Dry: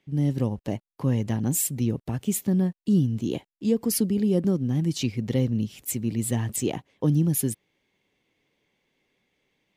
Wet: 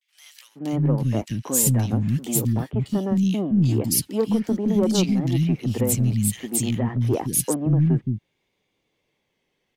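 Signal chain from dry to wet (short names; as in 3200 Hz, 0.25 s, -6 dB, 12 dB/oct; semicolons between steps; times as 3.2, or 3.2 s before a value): sample leveller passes 1; vibrato 0.5 Hz 69 cents; three bands offset in time highs, mids, lows 0.47/0.64 s, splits 250/2000 Hz; gain +2.5 dB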